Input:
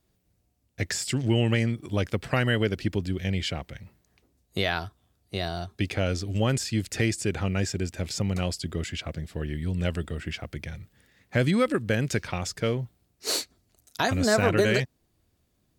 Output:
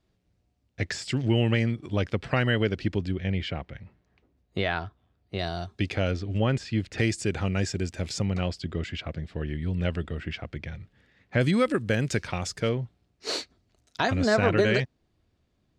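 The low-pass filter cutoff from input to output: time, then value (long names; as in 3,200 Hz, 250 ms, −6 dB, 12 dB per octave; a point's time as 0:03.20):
4,800 Hz
from 0:03.12 2,800 Hz
from 0:05.39 6,100 Hz
from 0:06.11 3,200 Hz
from 0:06.98 7,800 Hz
from 0:08.25 3,800 Hz
from 0:11.41 9,200 Hz
from 0:12.69 4,500 Hz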